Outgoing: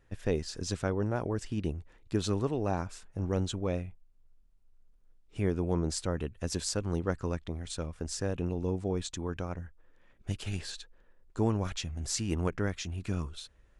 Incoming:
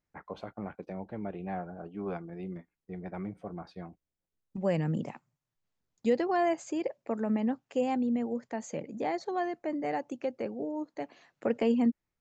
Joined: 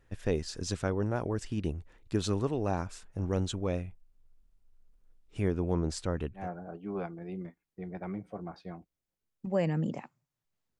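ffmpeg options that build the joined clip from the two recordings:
-filter_complex "[0:a]asettb=1/sr,asplit=3[s0][s1][s2];[s0]atrim=end=5.484[s3];[s1]atrim=start=5.48:end=6.49,asetpts=PTS-STARTPTS,afade=t=in:d=0.004:c=qsin,afade=t=out:st=1.006:d=0.004:c=qsin,highshelf=f=5200:g=-7.5[s4];[s2]atrim=start=6.486[s5];[s3][s4]acrossfade=d=0.004:c1=hsin:c2=qsin[s6];[s6][s5]acrossfade=d=0.004:c1=qsin:c2=hsin,apad=whole_dur=10.79,atrim=end=10.79,atrim=end=6.49,asetpts=PTS-STARTPTS[s7];[1:a]atrim=start=1.44:end=5.9,asetpts=PTS-STARTPTS[s8];[s7][s8]acrossfade=d=0.16:c1=tri:c2=tri"

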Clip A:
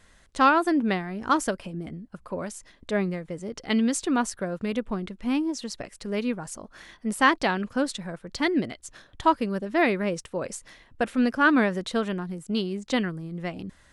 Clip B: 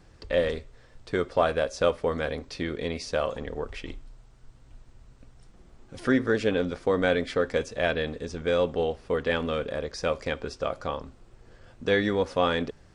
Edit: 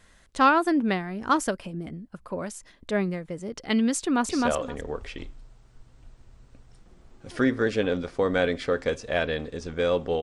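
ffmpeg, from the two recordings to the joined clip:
-filter_complex "[0:a]apad=whole_dur=10.22,atrim=end=10.22,atrim=end=4.292[s0];[1:a]atrim=start=2.968:end=8.9[s1];[s0][s1]acrossfade=d=0.004:c1=hsin:c2=hsin,asplit=2[s2][s3];[s3]afade=t=in:st=3.98:d=0.01,afade=t=out:st=4.29:d=0.01,aecho=0:1:260|520|780:0.841395|0.126209|0.0189314[s4];[s2][s4]amix=inputs=2:normalize=0"

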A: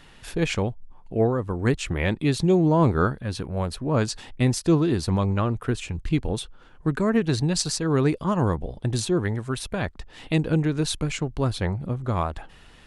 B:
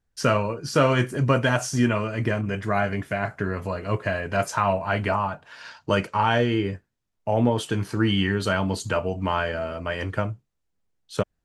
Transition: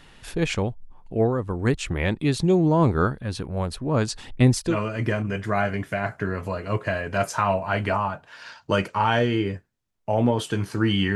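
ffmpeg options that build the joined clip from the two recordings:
-filter_complex "[0:a]asplit=3[s0][s1][s2];[s0]afade=t=out:st=4.19:d=0.02[s3];[s1]aphaser=in_gain=1:out_gain=1:delay=3.7:decay=0.4:speed=0.91:type=sinusoidal,afade=t=in:st=4.19:d=0.02,afade=t=out:st=4.78:d=0.02[s4];[s2]afade=t=in:st=4.78:d=0.02[s5];[s3][s4][s5]amix=inputs=3:normalize=0,apad=whole_dur=11.15,atrim=end=11.15,atrim=end=4.78,asetpts=PTS-STARTPTS[s6];[1:a]atrim=start=1.85:end=8.34,asetpts=PTS-STARTPTS[s7];[s6][s7]acrossfade=d=0.12:c1=tri:c2=tri"

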